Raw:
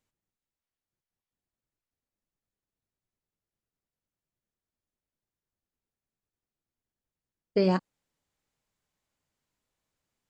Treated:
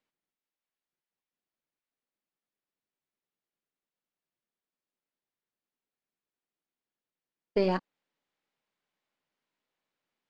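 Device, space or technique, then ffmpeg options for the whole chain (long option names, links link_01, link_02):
crystal radio: -af "highpass=220,lowpass=3400,aeval=exprs='if(lt(val(0),0),0.708*val(0),val(0))':channel_layout=same,equalizer=frequency=5100:width=0.38:gain=4"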